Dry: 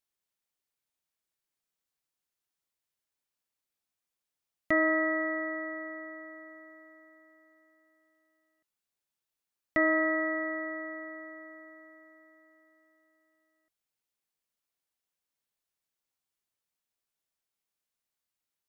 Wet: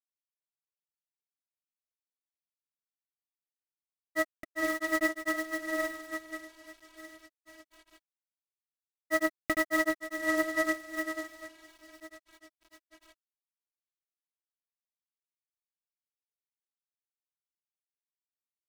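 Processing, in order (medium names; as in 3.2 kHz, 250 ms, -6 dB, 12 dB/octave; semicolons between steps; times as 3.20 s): companded quantiser 4-bit; phaser 1.2 Hz, delay 4.4 ms, feedback 31%; granulator, spray 787 ms, pitch spread up and down by 0 st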